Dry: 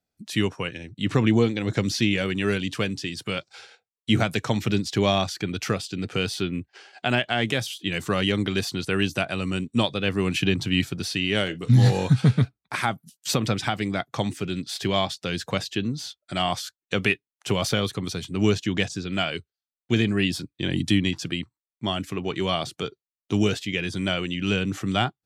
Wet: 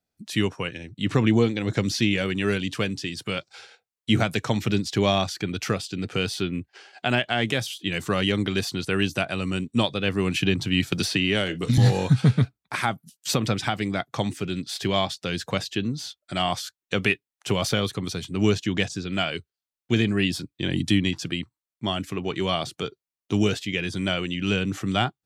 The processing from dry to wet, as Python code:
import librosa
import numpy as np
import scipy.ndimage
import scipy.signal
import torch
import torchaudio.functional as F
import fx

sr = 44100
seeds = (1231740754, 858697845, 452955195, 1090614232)

y = fx.band_squash(x, sr, depth_pct=100, at=(10.92, 11.78))